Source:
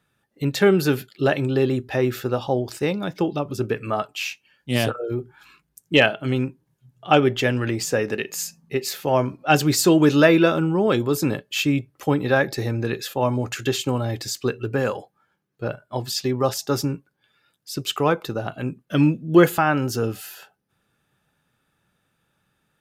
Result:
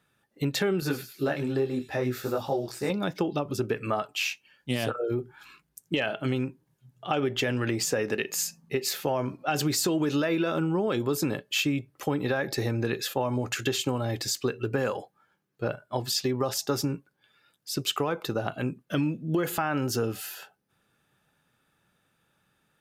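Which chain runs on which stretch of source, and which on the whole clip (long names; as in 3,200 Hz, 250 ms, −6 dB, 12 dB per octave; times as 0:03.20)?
0:00.80–0:02.90: parametric band 3,000 Hz −7 dB 0.35 octaves + delay with a high-pass on its return 104 ms, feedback 44%, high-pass 4,000 Hz, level −5.5 dB + micro pitch shift up and down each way 21 cents
whole clip: low-shelf EQ 140 Hz −4.5 dB; brickwall limiter −12 dBFS; downward compressor, threshold −23 dBFS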